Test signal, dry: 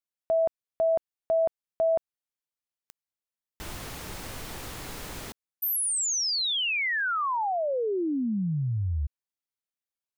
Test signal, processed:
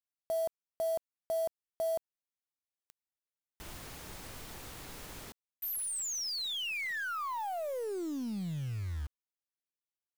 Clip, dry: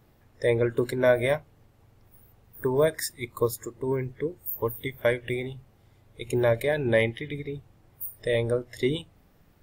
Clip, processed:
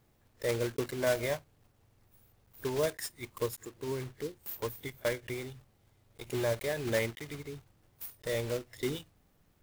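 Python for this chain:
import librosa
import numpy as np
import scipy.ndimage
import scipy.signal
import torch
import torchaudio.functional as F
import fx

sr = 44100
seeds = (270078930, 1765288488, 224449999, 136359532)

y = fx.block_float(x, sr, bits=3)
y = y * librosa.db_to_amplitude(-8.5)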